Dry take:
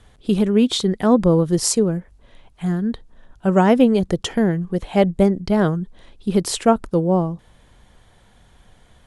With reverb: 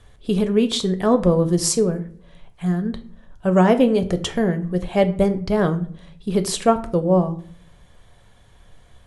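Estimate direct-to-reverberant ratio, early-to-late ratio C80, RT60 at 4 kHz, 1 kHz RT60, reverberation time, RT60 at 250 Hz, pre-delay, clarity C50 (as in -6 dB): 8.0 dB, 19.5 dB, 0.35 s, 0.45 s, 0.55 s, 0.75 s, 7 ms, 15.5 dB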